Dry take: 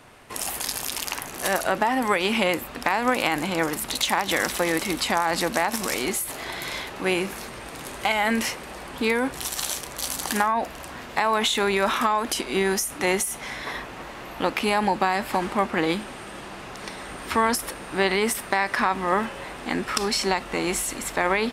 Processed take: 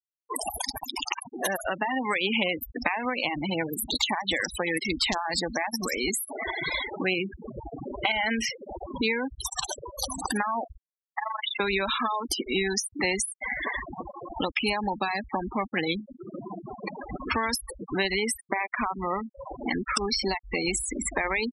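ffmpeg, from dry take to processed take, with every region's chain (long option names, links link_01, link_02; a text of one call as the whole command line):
ffmpeg -i in.wav -filter_complex "[0:a]asettb=1/sr,asplit=3[link_01][link_02][link_03];[link_01]atrim=end=3.054[link_04];[link_02]atrim=start=3.05:end=4.14,asetpts=PTS-STARTPTS,afade=type=in:duration=0.004:curve=qsin,afade=type=out:start_time=1.086:duration=0.004:curve=qsin,highpass=frequency=45:width=0.5412,highpass=frequency=45:width=1.3066,equalizer=frequency=1800:width=1.1:gain=-3[link_05];[link_03]atrim=start=4.136[link_06];[link_04][link_05]acrossfade=duration=0.004:curve1=hsin:curve2=qsin[link_07];[link_07][link_06]acrossfade=duration=0.004:curve1=qsin:curve2=hsin,asettb=1/sr,asplit=3[link_08][link_09][link_10];[link_08]atrim=end=4.924[link_11];[link_09]atrim=start=4.92:end=5.4,asetpts=PTS-STARTPTS,afade=type=in:duration=0.004:curve=qsin,afade=type=out:start_time=0.476:duration=0.004:curve=qsin,aeval=exprs='(mod(2.82*val(0)+1,2)-1)/2.82':channel_layout=same,adynamicequalizer=threshold=0.0158:dfrequency=1900:dqfactor=0.7:tfrequency=1900:tqfactor=0.7:attack=5:release=100:ratio=0.375:range=2.5:mode=boostabove:tftype=highshelf[link_12];[link_10]atrim=start=5.396[link_13];[link_11][link_12]acrossfade=duration=0.004:curve1=hsin:curve2=qsin[link_14];[link_14][link_13]acrossfade=duration=0.004:curve1=qsin:curve2=hsin,asettb=1/sr,asplit=3[link_15][link_16][link_17];[link_15]atrim=end=10.774[link_18];[link_16]atrim=start=10.77:end=11.6,asetpts=PTS-STARTPTS,afade=type=in:duration=0.004:curve=qsin,afade=type=out:start_time=0.826:duration=0.004:curve=qsin,tremolo=f=24:d=0.889,aeval=exprs='(tanh(11.2*val(0)+0.7)-tanh(0.7))/11.2':channel_layout=same,highpass=770,lowpass=3100[link_19];[link_17]atrim=start=11.596[link_20];[link_18][link_19]acrossfade=duration=0.004:curve1=hsin:curve2=qsin[link_21];[link_21][link_20]acrossfade=duration=0.004:curve1=qsin:curve2=hsin,asettb=1/sr,asplit=3[link_22][link_23][link_24];[link_22]atrim=end=18.484[link_25];[link_23]atrim=start=18.48:end=19.58,asetpts=PTS-STARTPTS,afade=type=in:duration=0.004:curve=qsin,afade=type=out:start_time=1.096:duration=0.004:curve=qsin,acrossover=split=3100[link_26][link_27];[link_27]acompressor=threshold=-43dB:ratio=4:attack=1:release=60[link_28];[link_26][link_28]amix=inputs=2:normalize=0,equalizer=frequency=1700:width_type=o:width=0.29:gain=-7[link_29];[link_24]atrim=start=19.576[link_30];[link_25][link_29]acrossfade=duration=0.004:curve1=hsin:curve2=qsin[link_31];[link_31][link_30]acrossfade=duration=0.004:curve1=qsin:curve2=hsin,afftfilt=real='re*gte(hypot(re,im),0.0398)':imag='im*gte(hypot(re,im),0.0398)':win_size=1024:overlap=0.75,acrossover=split=97|2700[link_32][link_33][link_34];[link_32]acompressor=threshold=-48dB:ratio=4[link_35];[link_33]acompressor=threshold=-37dB:ratio=4[link_36];[link_34]acompressor=threshold=-35dB:ratio=4[link_37];[link_35][link_36][link_37]amix=inputs=3:normalize=0,afftfilt=real='re*gte(hypot(re,im),0.0316)':imag='im*gte(hypot(re,im),0.0316)':win_size=1024:overlap=0.75,volume=8.5dB" out.wav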